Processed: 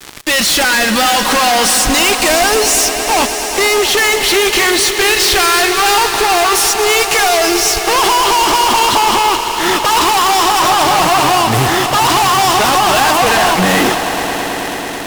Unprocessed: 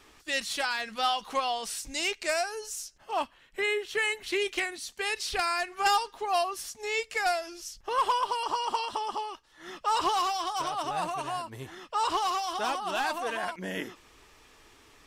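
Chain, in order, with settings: fuzz box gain 53 dB, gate -51 dBFS; echo with a slow build-up 109 ms, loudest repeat 5, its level -14 dB; trim +2 dB

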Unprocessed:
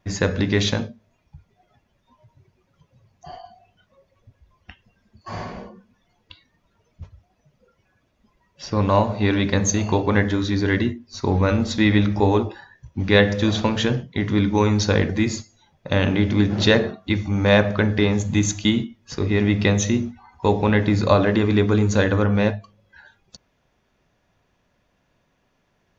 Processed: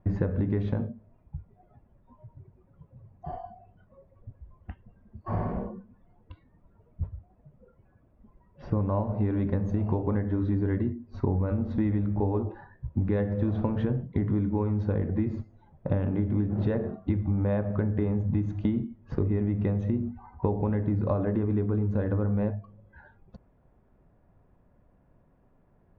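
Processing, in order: low-pass 1.2 kHz 12 dB/octave; tilt EQ -2 dB/octave; compression 12:1, threshold -23 dBFS, peak gain reduction 16 dB

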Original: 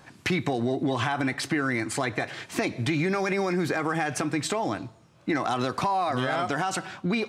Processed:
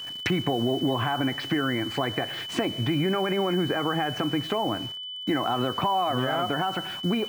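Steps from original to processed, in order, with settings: low-pass that closes with the level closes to 1.6 kHz, closed at -24 dBFS; word length cut 8-bit, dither none; whistle 3 kHz -35 dBFS; trim +1 dB

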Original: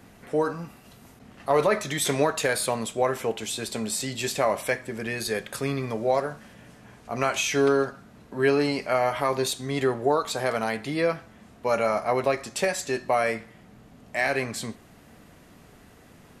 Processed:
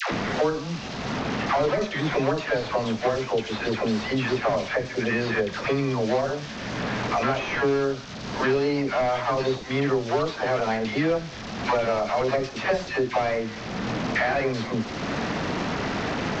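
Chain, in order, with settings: one-bit delta coder 32 kbps, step -38 dBFS; phase dispersion lows, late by 116 ms, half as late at 690 Hz; three bands compressed up and down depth 100%; trim +2 dB

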